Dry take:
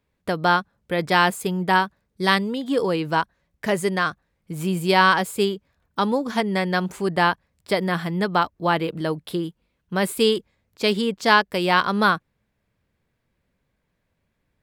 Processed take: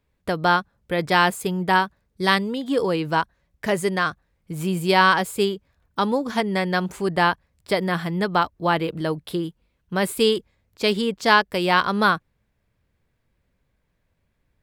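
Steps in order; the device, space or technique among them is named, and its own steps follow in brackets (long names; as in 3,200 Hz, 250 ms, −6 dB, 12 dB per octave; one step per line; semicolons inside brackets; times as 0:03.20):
low shelf boost with a cut just above (low-shelf EQ 87 Hz +7.5 dB; parametric band 200 Hz −2 dB)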